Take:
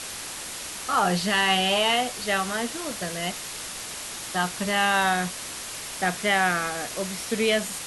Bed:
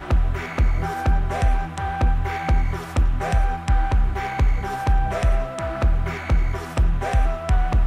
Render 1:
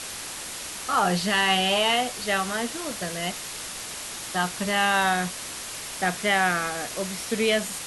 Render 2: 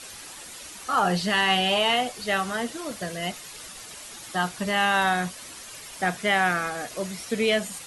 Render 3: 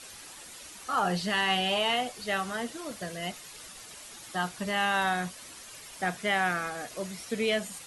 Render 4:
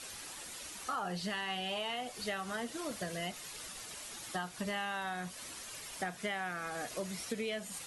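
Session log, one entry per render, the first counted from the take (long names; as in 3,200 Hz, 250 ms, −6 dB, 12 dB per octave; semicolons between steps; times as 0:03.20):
no processing that can be heard
broadband denoise 9 dB, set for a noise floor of −36 dBFS
level −5 dB
downward compressor 10 to 1, threshold −34 dBFS, peak gain reduction 12 dB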